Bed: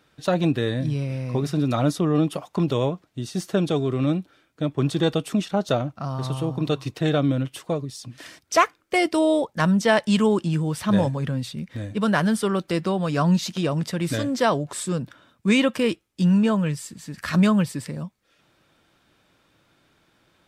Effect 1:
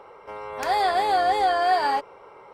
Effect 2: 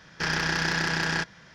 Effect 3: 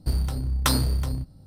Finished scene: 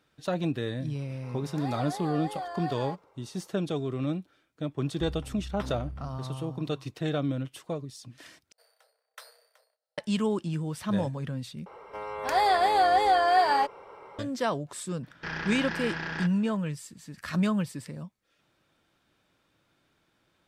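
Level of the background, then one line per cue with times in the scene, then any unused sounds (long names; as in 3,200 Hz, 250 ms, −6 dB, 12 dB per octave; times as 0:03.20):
bed −8 dB
0:00.95: mix in 1 −15.5 dB + parametric band 2,700 Hz −4.5 dB
0:04.94: mix in 3 −14.5 dB + Savitzky-Golay smoothing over 25 samples
0:08.52: overwrite with 3 −17.5 dB + Chebyshev high-pass with heavy ripple 450 Hz, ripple 9 dB
0:11.66: overwrite with 1 −1 dB
0:15.03: mix in 2 −7 dB + low-pass filter 3,200 Hz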